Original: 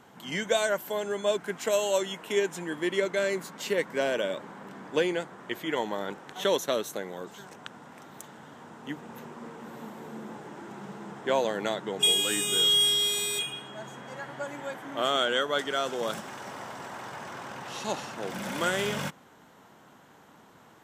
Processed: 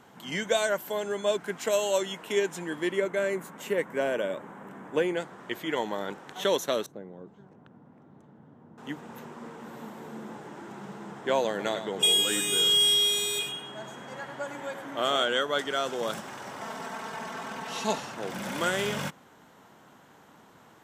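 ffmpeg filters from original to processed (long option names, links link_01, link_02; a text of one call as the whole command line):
ffmpeg -i in.wav -filter_complex "[0:a]asettb=1/sr,asplit=3[link_01][link_02][link_03];[link_01]atrim=end=2.924[link_04];[link_02]atrim=start=2.92:end=5.17,asetpts=PTS-STARTPTS,afade=type=in:duration=0.004:curve=qsin,afade=type=out:start_time=2.246:duration=0.004:curve=qsin,equalizer=frequency=4600:width=1.4:gain=-13.5[link_05];[link_03]atrim=start=5.166[link_06];[link_04][link_05]acrossfade=duration=0.004:curve1=hsin:curve2=qsin[link_07];[link_07][link_06]acrossfade=duration=0.004:curve1=qsin:curve2=hsin,asettb=1/sr,asplit=3[link_08][link_09][link_10];[link_08]atrim=end=6.864[link_11];[link_09]atrim=start=6.86:end=8.78,asetpts=PTS-STARTPTS,afade=type=in:duration=0.004:curve=qsin,afade=type=out:start_time=1.916:duration=0.004:curve=qsin,bandpass=frequency=110:width_type=q:width=0.5[link_12];[link_10]atrim=start=8.776[link_13];[link_11][link_12]acrossfade=duration=0.004:curve1=hsin:curve2=qsin[link_14];[link_14][link_13]acrossfade=duration=0.004:curve1=qsin:curve2=hsin,asettb=1/sr,asplit=3[link_15][link_16][link_17];[link_15]atrim=end=11.494[link_18];[link_16]atrim=start=11.49:end=15.24,asetpts=PTS-STARTPTS,afade=type=in:duration=0.004:curve=qsin,afade=type=out:start_time=3.746:duration=0.004:curve=qsin,aecho=1:1:100:0.335,atrim=end_sample=165375[link_19];[link_17]atrim=start=15.236[link_20];[link_18][link_19]acrossfade=duration=0.004:curve1=hsin:curve2=qsin[link_21];[link_21][link_20]acrossfade=duration=0.004:curve1=qsin:curve2=hsin,asettb=1/sr,asplit=3[link_22][link_23][link_24];[link_22]atrim=end=16.614[link_25];[link_23]atrim=start=16.61:end=17.98,asetpts=PTS-STARTPTS,afade=type=in:duration=0.004:curve=qsin,afade=type=out:start_time=1.366:duration=0.004:curve=qsin,aecho=1:1:4.5:0.96,atrim=end_sample=60417[link_26];[link_24]atrim=start=17.976[link_27];[link_25][link_26]acrossfade=duration=0.004:curve1=hsin:curve2=qsin[link_28];[link_28][link_27]acrossfade=duration=0.004:curve1=qsin:curve2=hsin" out.wav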